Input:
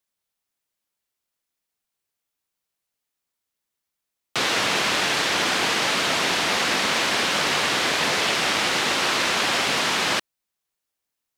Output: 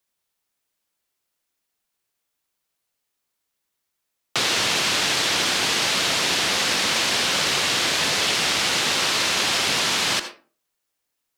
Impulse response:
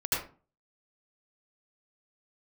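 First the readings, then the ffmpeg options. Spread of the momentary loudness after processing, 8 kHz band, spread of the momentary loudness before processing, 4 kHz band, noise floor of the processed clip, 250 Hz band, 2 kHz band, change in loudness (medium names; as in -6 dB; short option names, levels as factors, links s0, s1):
1 LU, +4.0 dB, 1 LU, +2.5 dB, -79 dBFS, -1.5 dB, -1.0 dB, +1.0 dB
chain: -filter_complex "[0:a]acrossover=split=160|3000[s0][s1][s2];[s1]acompressor=threshold=0.0355:ratio=6[s3];[s0][s3][s2]amix=inputs=3:normalize=0,asplit=2[s4][s5];[s5]lowshelf=f=190:t=q:w=1.5:g=-13.5[s6];[1:a]atrim=start_sample=2205[s7];[s6][s7]afir=irnorm=-1:irlink=0,volume=0.141[s8];[s4][s8]amix=inputs=2:normalize=0,volume=1.41"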